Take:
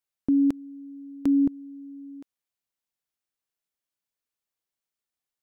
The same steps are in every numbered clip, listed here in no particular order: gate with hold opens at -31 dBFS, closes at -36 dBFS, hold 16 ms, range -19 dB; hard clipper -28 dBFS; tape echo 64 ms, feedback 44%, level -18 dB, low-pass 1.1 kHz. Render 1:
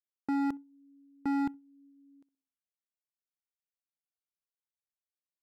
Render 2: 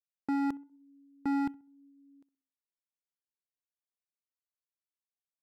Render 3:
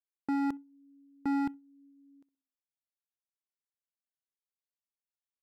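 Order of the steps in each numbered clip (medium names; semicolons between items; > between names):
tape echo > hard clipper > gate with hold; hard clipper > gate with hold > tape echo; hard clipper > tape echo > gate with hold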